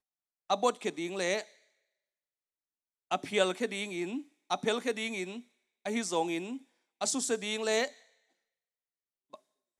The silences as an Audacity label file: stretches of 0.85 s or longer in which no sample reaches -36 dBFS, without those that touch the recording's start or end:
1.420000	3.110000	silence
7.880000	9.340000	silence